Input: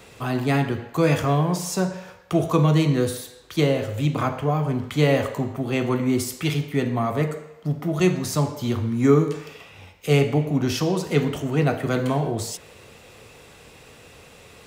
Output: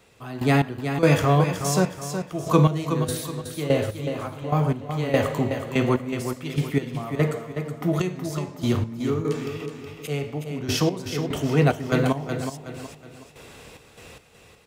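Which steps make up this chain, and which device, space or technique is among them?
trance gate with a delay (step gate "..x..xx.x." 73 bpm -12 dB; feedback echo 0.37 s, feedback 38%, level -8 dB); gain +2 dB

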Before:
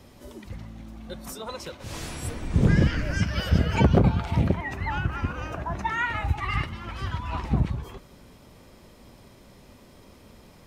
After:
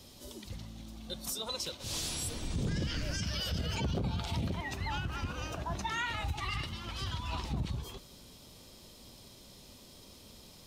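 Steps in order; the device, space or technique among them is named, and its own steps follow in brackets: over-bright horn tweeter (resonant high shelf 2700 Hz +9.5 dB, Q 1.5; limiter -20.5 dBFS, peak gain reduction 11.5 dB); gain -5.5 dB

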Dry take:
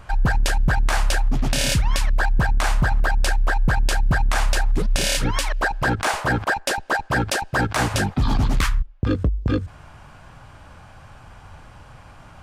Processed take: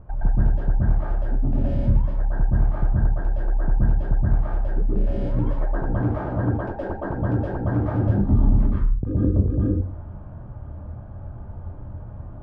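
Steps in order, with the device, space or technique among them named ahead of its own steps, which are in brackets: television next door (compressor, threshold -23 dBFS, peak gain reduction 8.5 dB; LPF 480 Hz 12 dB/oct; reverb RT60 0.40 s, pre-delay 0.114 s, DRR -7 dB)

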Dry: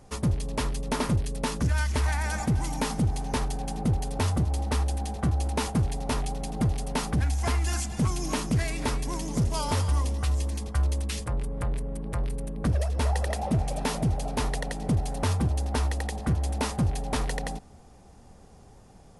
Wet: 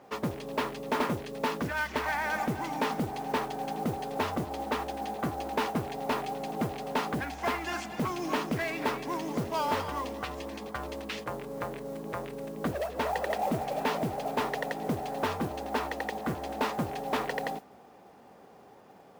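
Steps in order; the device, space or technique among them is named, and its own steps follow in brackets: carbon microphone (BPF 310–2800 Hz; soft clip -23.5 dBFS, distortion -18 dB; modulation noise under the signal 21 dB); gain +4 dB

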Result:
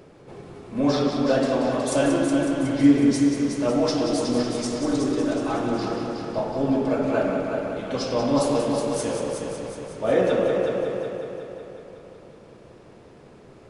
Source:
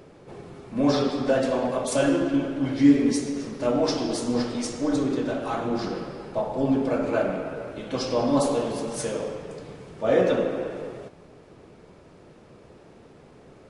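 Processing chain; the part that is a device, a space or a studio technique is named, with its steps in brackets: multi-head tape echo (multi-head echo 0.184 s, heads first and second, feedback 57%, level -8.5 dB; wow and flutter 11 cents)

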